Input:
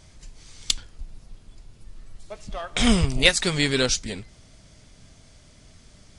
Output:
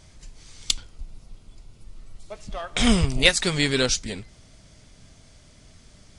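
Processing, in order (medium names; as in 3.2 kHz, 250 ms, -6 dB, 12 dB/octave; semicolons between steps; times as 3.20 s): 0.66–2.33 s: band-stop 1.7 kHz, Q 7.5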